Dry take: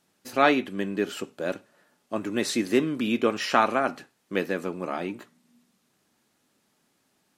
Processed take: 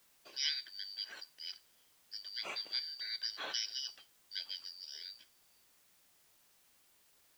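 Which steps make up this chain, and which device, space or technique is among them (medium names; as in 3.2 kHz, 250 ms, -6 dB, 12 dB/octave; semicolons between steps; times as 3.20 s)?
split-band scrambled radio (four frequency bands reordered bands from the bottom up 4321; band-pass 320–3100 Hz; white noise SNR 24 dB); trim -8.5 dB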